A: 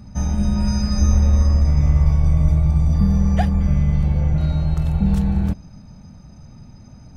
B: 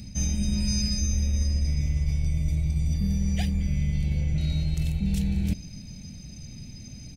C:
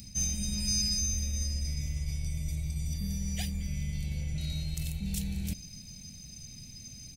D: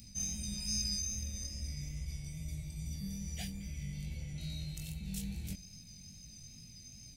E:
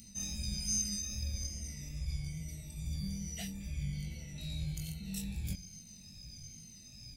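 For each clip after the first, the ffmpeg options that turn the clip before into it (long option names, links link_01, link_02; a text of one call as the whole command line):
ffmpeg -i in.wav -af "firequalizer=gain_entry='entry(290,0);entry(1100,-17);entry(2200,9);entry(6800,12)':delay=0.05:min_phase=1,areverse,acompressor=threshold=-22dB:ratio=6,areverse" out.wav
ffmpeg -i in.wav -af "equalizer=frequency=330:width=1.5:gain=-2.5,crystalizer=i=3.5:c=0,volume=-8.5dB" out.wav
ffmpeg -i in.wav -af "flanger=delay=17.5:depth=4.1:speed=2.4,volume=-3dB" out.wav
ffmpeg -i in.wav -af "afftfilt=real='re*pow(10,11/40*sin(2*PI*(1.9*log(max(b,1)*sr/1024/100)/log(2)-(-1.2)*(pts-256)/sr)))':imag='im*pow(10,11/40*sin(2*PI*(1.9*log(max(b,1)*sr/1024/100)/log(2)-(-1.2)*(pts-256)/sr)))':win_size=1024:overlap=0.75" out.wav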